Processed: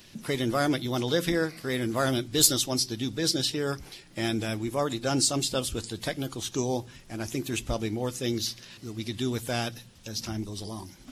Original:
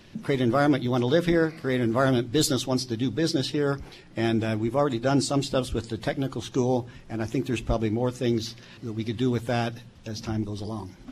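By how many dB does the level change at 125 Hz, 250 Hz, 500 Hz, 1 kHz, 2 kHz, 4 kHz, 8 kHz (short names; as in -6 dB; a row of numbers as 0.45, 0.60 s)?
-5.0, -5.0, -4.5, -3.5, -1.5, +3.5, +8.0 dB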